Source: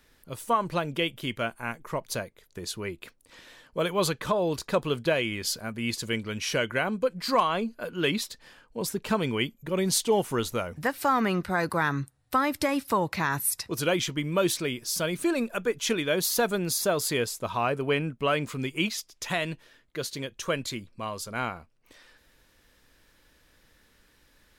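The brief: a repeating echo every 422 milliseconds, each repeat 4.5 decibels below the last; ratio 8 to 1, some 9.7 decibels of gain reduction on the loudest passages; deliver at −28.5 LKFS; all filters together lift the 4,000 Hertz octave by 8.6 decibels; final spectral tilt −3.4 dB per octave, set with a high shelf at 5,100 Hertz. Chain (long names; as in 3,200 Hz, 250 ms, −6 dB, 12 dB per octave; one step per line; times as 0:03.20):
parametric band 4,000 Hz +8 dB
high-shelf EQ 5,100 Hz +7 dB
downward compressor 8 to 1, threshold −26 dBFS
repeating echo 422 ms, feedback 60%, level −4.5 dB
level +0.5 dB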